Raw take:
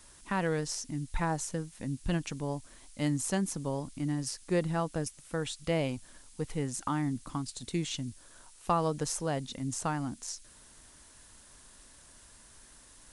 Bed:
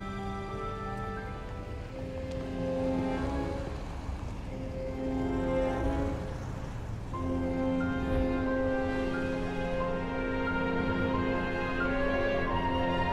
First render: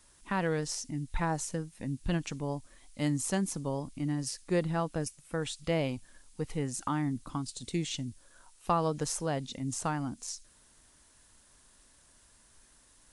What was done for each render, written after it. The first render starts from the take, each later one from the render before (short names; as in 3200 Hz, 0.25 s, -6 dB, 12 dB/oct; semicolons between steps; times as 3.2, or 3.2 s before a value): noise print and reduce 6 dB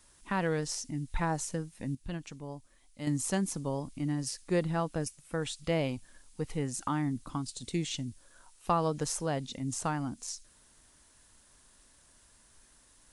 1.95–3.07 gain -7.5 dB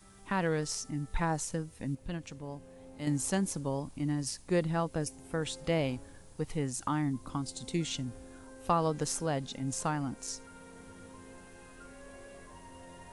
add bed -21.5 dB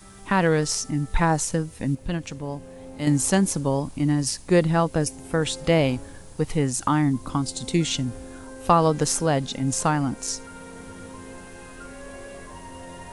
gain +10.5 dB